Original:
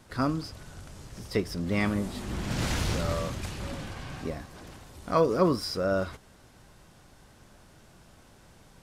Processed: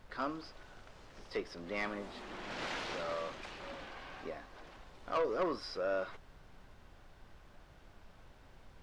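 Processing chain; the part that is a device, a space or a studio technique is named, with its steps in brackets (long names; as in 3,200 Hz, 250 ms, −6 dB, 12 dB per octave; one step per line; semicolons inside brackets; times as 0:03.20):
aircraft cabin announcement (band-pass filter 440–3,600 Hz; soft clipping −22.5 dBFS, distortion −12 dB; brown noise bed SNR 14 dB)
level −4 dB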